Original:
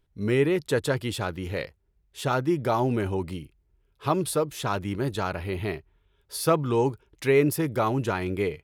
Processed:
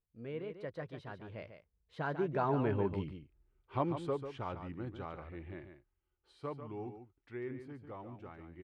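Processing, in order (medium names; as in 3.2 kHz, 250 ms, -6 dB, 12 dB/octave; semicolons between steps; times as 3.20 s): Doppler pass-by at 3.04 s, 41 m/s, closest 22 m; low-pass 2.3 kHz 12 dB/octave; on a send: delay 144 ms -9 dB; on the sum: trim -4.5 dB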